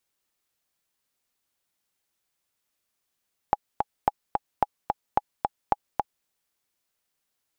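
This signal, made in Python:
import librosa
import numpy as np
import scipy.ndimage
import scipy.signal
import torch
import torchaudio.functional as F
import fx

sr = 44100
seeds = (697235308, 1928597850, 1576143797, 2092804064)

y = fx.click_track(sr, bpm=219, beats=2, bars=5, hz=829.0, accent_db=3.5, level_db=-6.5)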